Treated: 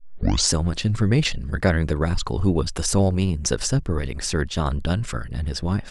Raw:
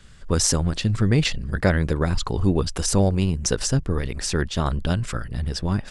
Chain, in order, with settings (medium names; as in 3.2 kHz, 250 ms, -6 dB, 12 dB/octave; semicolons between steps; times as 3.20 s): tape start-up on the opening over 0.51 s